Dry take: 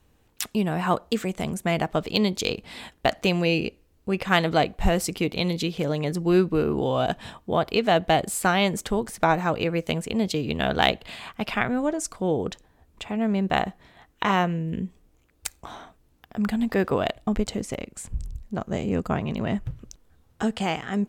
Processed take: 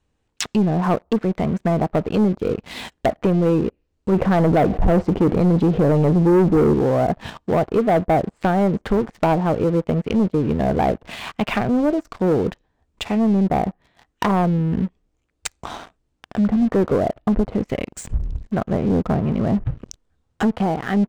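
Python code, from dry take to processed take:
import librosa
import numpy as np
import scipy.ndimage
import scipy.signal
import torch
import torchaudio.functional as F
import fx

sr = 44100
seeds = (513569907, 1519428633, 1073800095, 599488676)

y = fx.env_flatten(x, sr, amount_pct=50, at=(4.12, 6.74))
y = scipy.signal.sosfilt(scipy.signal.butter(6, 9300.0, 'lowpass', fs=sr, output='sos'), y)
y = fx.env_lowpass_down(y, sr, base_hz=720.0, full_db=-21.5)
y = fx.leveller(y, sr, passes=3)
y = y * librosa.db_to_amplitude(-2.5)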